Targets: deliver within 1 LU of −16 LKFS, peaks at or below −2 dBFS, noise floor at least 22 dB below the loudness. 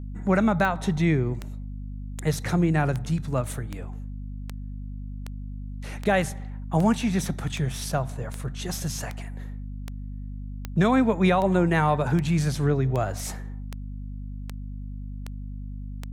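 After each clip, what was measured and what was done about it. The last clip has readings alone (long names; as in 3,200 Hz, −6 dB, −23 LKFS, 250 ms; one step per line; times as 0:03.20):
number of clicks 21; mains hum 50 Hz; hum harmonics up to 250 Hz; level of the hum −33 dBFS; integrated loudness −25.0 LKFS; sample peak −10.0 dBFS; target loudness −16.0 LKFS
→ click removal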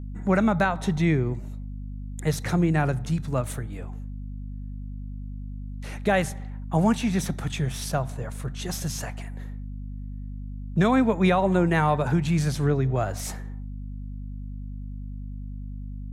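number of clicks 0; mains hum 50 Hz; hum harmonics up to 250 Hz; level of the hum −33 dBFS
→ hum removal 50 Hz, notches 5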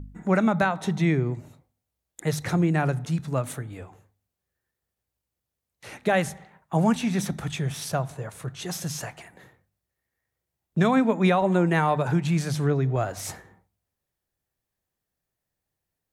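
mains hum none found; integrated loudness −25.5 LKFS; sample peak −10.0 dBFS; target loudness −16.0 LKFS
→ level +9.5 dB
brickwall limiter −2 dBFS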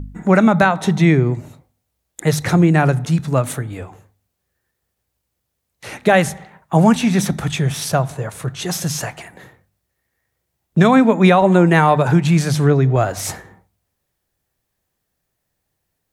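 integrated loudness −16.0 LKFS; sample peak −2.0 dBFS; background noise floor −75 dBFS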